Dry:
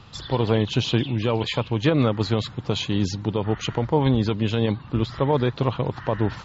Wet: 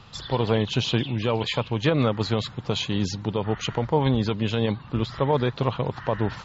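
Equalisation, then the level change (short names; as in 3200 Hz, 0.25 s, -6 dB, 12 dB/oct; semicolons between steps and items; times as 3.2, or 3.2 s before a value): bell 77 Hz -3.5 dB 1.6 oct; bell 310 Hz -4 dB 0.6 oct; 0.0 dB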